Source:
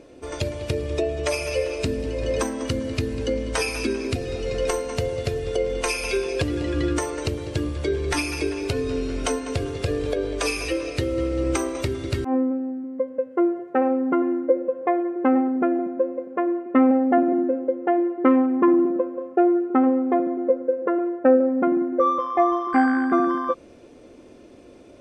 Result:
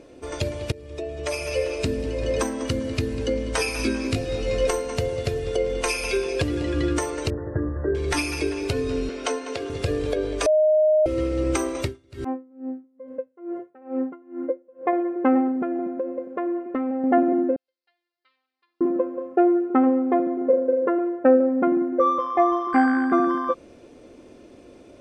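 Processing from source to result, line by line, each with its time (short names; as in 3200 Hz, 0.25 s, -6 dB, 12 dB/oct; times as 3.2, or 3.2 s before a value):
0.72–1.64 fade in, from -19 dB
3.77–4.67 doubler 19 ms -4 dB
7.3–7.95 brick-wall FIR low-pass 2000 Hz
9.09–9.7 three-band isolator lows -21 dB, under 270 Hz, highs -12 dB, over 7400 Hz
10.46–11.06 bleep 618 Hz -14.5 dBFS
11.83–14.93 dB-linear tremolo 2.3 Hz, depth 30 dB
15.51–17.04 compressor, threshold -22 dBFS
17.56–18.81 Butterworth band-pass 4600 Hz, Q 3.7
20.37–20.89 flutter echo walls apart 7.2 m, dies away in 0.49 s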